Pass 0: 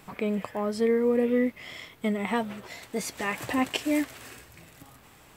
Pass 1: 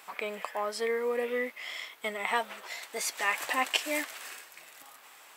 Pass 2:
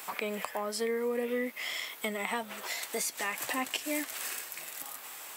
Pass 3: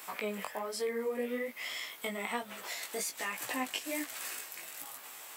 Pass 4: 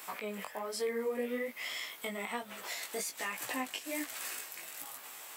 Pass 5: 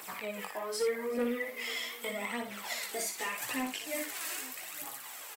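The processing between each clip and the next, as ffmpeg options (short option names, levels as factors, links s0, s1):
-af "highpass=770,volume=1.41"
-filter_complex "[0:a]crystalizer=i=1.5:c=0,lowshelf=f=450:g=6,acrossover=split=250[s0][s1];[s1]acompressor=threshold=0.0141:ratio=4[s2];[s0][s2]amix=inputs=2:normalize=0,volume=1.58"
-af "flanger=delay=15.5:depth=4.9:speed=1.2"
-af "alimiter=level_in=1.19:limit=0.0631:level=0:latency=1:release=290,volume=0.841"
-filter_complex "[0:a]aphaser=in_gain=1:out_gain=1:delay=3.2:decay=0.56:speed=0.82:type=triangular,asoftclip=type=hard:threshold=0.0473,asplit=2[s0][s1];[s1]aecho=0:1:59|377|868:0.473|0.1|0.119[s2];[s0][s2]amix=inputs=2:normalize=0"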